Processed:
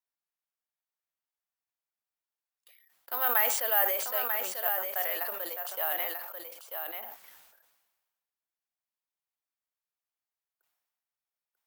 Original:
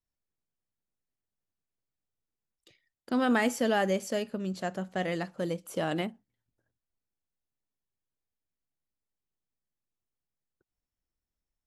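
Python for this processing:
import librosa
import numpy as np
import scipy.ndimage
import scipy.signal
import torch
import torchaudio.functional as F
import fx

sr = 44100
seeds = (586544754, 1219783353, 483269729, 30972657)

y = scipy.signal.sosfilt(scipy.signal.butter(4, 690.0, 'highpass', fs=sr, output='sos'), x)
y = fx.high_shelf(y, sr, hz=4700.0, db=-11.5)
y = y + 10.0 ** (-6.0 / 20.0) * np.pad(y, (int(941 * sr / 1000.0), 0))[:len(y)]
y = (np.kron(y[::3], np.eye(3)[0]) * 3)[:len(y)]
y = fx.sustainer(y, sr, db_per_s=43.0)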